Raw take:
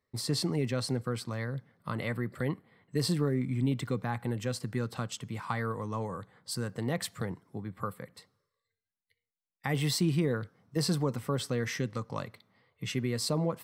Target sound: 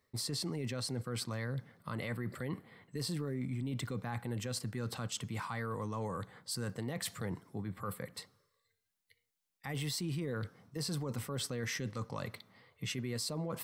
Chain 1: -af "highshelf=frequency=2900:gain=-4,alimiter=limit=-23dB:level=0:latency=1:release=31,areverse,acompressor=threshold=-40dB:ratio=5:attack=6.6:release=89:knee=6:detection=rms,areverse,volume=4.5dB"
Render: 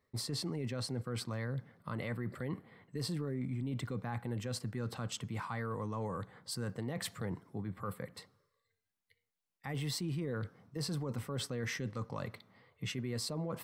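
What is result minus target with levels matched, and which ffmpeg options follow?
8,000 Hz band −3.0 dB
-af "highshelf=frequency=2900:gain=4,alimiter=limit=-23dB:level=0:latency=1:release=31,areverse,acompressor=threshold=-40dB:ratio=5:attack=6.6:release=89:knee=6:detection=rms,areverse,volume=4.5dB"

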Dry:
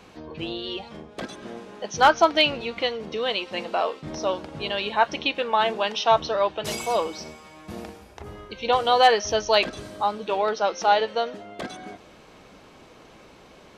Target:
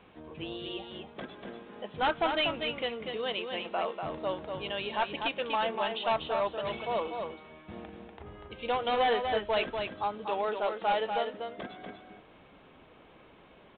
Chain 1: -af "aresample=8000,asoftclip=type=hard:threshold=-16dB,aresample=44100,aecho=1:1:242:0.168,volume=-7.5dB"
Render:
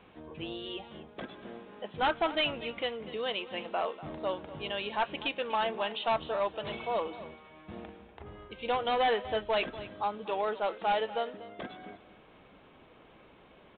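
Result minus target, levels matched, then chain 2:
echo-to-direct −10 dB
-af "aresample=8000,asoftclip=type=hard:threshold=-16dB,aresample=44100,aecho=1:1:242:0.531,volume=-7.5dB"

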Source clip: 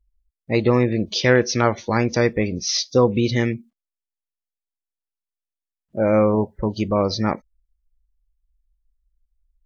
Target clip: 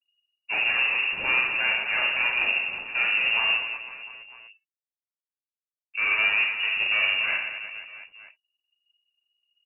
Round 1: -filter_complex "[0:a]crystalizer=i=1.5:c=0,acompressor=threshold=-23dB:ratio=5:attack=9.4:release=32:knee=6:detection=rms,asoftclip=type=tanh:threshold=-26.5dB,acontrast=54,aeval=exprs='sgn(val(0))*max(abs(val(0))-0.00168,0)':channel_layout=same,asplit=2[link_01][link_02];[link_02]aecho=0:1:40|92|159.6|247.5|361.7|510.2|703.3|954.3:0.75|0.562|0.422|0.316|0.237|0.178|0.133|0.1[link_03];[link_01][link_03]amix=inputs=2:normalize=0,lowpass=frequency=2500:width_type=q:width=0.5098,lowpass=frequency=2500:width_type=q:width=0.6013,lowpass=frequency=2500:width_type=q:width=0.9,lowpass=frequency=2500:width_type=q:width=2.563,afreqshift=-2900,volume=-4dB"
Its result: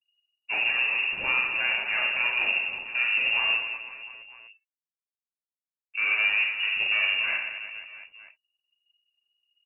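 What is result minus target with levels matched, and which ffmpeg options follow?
downward compressor: peak gain reduction +11 dB
-filter_complex "[0:a]crystalizer=i=1.5:c=0,asoftclip=type=tanh:threshold=-26.5dB,acontrast=54,aeval=exprs='sgn(val(0))*max(abs(val(0))-0.00168,0)':channel_layout=same,asplit=2[link_01][link_02];[link_02]aecho=0:1:40|92|159.6|247.5|361.7|510.2|703.3|954.3:0.75|0.562|0.422|0.316|0.237|0.178|0.133|0.1[link_03];[link_01][link_03]amix=inputs=2:normalize=0,lowpass=frequency=2500:width_type=q:width=0.5098,lowpass=frequency=2500:width_type=q:width=0.6013,lowpass=frequency=2500:width_type=q:width=0.9,lowpass=frequency=2500:width_type=q:width=2.563,afreqshift=-2900,volume=-4dB"

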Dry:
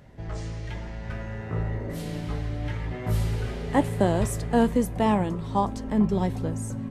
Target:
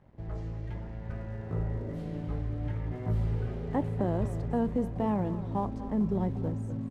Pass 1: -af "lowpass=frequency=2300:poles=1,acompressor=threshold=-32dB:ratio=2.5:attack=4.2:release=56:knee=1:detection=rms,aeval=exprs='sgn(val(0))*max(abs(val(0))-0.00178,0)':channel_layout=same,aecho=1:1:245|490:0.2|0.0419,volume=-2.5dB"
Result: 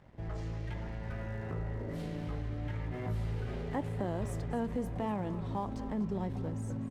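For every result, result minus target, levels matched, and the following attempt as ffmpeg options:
2,000 Hz band +7.0 dB; downward compressor: peak gain reduction +6.5 dB
-af "lowpass=frequency=690:poles=1,acompressor=threshold=-32dB:ratio=2.5:attack=4.2:release=56:knee=1:detection=rms,aeval=exprs='sgn(val(0))*max(abs(val(0))-0.00178,0)':channel_layout=same,aecho=1:1:245|490:0.2|0.0419,volume=-2.5dB"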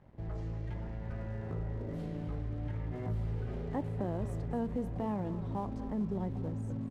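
downward compressor: peak gain reduction +6 dB
-af "lowpass=frequency=690:poles=1,acompressor=threshold=-22dB:ratio=2.5:attack=4.2:release=56:knee=1:detection=rms,aeval=exprs='sgn(val(0))*max(abs(val(0))-0.00178,0)':channel_layout=same,aecho=1:1:245|490:0.2|0.0419,volume=-2.5dB"

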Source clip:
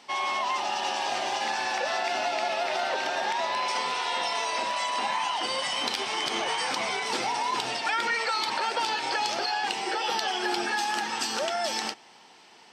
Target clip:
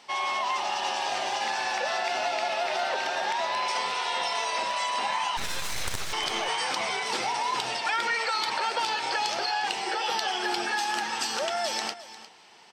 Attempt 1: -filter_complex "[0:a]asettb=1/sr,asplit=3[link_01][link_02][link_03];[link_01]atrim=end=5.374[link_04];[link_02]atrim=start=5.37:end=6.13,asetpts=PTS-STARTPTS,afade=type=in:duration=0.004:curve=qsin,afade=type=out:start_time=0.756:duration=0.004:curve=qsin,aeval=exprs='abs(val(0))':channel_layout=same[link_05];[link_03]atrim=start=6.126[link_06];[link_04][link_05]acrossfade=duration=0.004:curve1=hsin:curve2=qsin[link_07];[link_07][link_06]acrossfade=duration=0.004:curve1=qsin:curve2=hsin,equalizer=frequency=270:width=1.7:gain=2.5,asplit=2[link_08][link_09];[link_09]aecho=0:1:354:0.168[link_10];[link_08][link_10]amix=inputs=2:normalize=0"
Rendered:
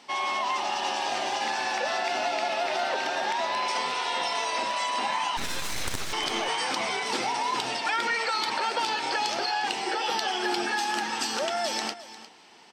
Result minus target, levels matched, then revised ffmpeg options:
250 Hz band +4.5 dB
-filter_complex "[0:a]asettb=1/sr,asplit=3[link_01][link_02][link_03];[link_01]atrim=end=5.374[link_04];[link_02]atrim=start=5.37:end=6.13,asetpts=PTS-STARTPTS,afade=type=in:duration=0.004:curve=qsin,afade=type=out:start_time=0.756:duration=0.004:curve=qsin,aeval=exprs='abs(val(0))':channel_layout=same[link_05];[link_03]atrim=start=6.126[link_06];[link_04][link_05]acrossfade=duration=0.004:curve1=hsin:curve2=qsin[link_07];[link_07][link_06]acrossfade=duration=0.004:curve1=qsin:curve2=hsin,equalizer=frequency=270:width=1.7:gain=-5,asplit=2[link_08][link_09];[link_09]aecho=0:1:354:0.168[link_10];[link_08][link_10]amix=inputs=2:normalize=0"

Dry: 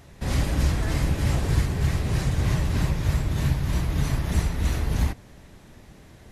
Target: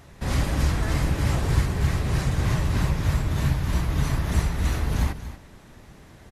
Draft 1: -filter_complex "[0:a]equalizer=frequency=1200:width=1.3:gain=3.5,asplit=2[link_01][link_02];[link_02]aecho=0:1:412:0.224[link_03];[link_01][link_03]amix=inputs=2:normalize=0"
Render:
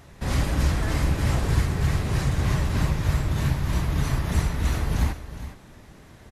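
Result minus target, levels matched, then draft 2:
echo 175 ms late
-filter_complex "[0:a]equalizer=frequency=1200:width=1.3:gain=3.5,asplit=2[link_01][link_02];[link_02]aecho=0:1:237:0.224[link_03];[link_01][link_03]amix=inputs=2:normalize=0"

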